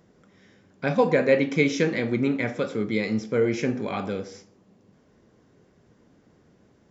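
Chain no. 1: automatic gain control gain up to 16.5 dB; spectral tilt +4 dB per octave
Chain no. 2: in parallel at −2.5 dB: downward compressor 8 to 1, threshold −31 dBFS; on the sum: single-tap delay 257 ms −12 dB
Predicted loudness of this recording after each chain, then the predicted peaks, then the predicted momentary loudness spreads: −18.5, −23.0 LKFS; −1.5, −5.5 dBFS; 8, 10 LU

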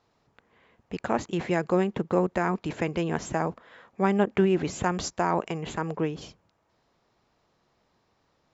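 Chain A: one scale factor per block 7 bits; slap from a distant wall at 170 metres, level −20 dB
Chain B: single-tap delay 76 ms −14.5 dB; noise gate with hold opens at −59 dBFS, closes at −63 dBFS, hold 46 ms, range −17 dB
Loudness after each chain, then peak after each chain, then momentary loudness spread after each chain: −27.5, −27.5 LKFS; −9.5, −9.5 dBFS; 11, 9 LU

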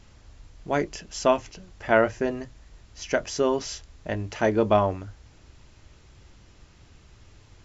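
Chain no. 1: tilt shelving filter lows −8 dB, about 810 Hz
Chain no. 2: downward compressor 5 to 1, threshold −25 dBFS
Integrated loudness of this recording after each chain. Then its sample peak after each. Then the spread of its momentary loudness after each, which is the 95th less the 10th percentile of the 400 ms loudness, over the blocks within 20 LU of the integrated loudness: −26.0, −32.5 LKFS; −2.5, −12.0 dBFS; 14, 15 LU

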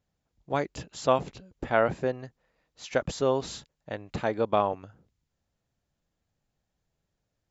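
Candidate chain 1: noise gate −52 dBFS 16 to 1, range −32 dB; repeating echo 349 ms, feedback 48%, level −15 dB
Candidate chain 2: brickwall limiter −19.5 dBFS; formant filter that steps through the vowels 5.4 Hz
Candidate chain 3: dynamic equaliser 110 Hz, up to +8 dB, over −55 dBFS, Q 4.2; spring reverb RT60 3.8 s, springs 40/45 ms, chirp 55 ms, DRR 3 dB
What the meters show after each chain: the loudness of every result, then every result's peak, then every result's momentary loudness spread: −29.5, −43.0, −28.5 LKFS; −8.0, −25.0, −8.0 dBFS; 18, 20, 14 LU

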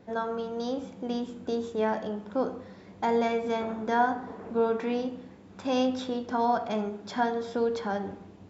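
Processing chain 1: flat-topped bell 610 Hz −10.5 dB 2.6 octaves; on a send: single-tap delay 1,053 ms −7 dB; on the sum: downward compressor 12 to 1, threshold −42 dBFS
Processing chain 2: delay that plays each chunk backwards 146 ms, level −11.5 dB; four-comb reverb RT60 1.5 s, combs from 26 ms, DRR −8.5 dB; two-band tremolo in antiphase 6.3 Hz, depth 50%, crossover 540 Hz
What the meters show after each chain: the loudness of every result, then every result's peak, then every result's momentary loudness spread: −46.0, −23.0 LKFS; −33.5, −6.5 dBFS; 2, 7 LU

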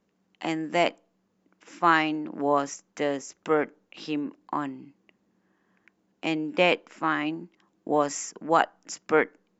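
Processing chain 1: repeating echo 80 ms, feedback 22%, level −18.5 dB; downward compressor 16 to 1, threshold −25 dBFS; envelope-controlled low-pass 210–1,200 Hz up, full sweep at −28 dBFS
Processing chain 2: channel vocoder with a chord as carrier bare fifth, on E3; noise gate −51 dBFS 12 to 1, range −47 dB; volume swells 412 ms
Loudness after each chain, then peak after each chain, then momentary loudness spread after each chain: −29.5, −39.0 LKFS; −9.0, −22.5 dBFS; 14, 12 LU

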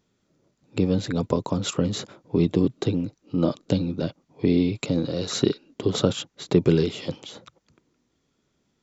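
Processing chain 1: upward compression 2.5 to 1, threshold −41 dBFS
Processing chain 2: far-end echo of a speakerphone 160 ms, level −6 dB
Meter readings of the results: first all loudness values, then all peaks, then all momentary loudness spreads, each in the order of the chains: −25.0, −24.5 LKFS; −4.5, −4.5 dBFS; 11, 10 LU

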